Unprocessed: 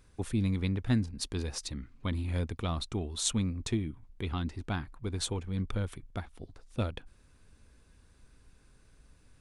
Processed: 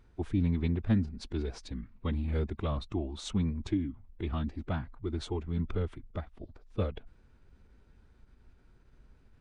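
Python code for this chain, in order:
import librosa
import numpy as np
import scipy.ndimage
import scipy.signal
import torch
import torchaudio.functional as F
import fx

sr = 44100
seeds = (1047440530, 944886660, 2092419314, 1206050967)

y = fx.pitch_keep_formants(x, sr, semitones=-2.0)
y = fx.spacing_loss(y, sr, db_at_10k=22)
y = y * librosa.db_to_amplitude(1.5)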